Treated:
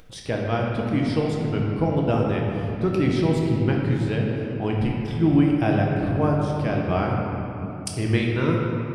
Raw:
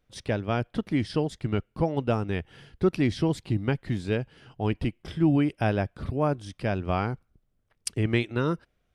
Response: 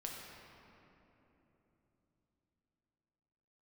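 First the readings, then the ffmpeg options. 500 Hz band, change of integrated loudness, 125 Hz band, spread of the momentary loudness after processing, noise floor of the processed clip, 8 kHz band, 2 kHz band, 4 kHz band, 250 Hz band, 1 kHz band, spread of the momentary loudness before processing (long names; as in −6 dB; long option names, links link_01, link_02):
+4.5 dB, +5.0 dB, +6.0 dB, 6 LU, −33 dBFS, can't be measured, +3.5 dB, +3.0 dB, +5.5 dB, +4.5 dB, 8 LU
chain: -filter_complex "[1:a]atrim=start_sample=2205[link_01];[0:a][link_01]afir=irnorm=-1:irlink=0,acompressor=mode=upward:threshold=-40dB:ratio=2.5,volume=5dB"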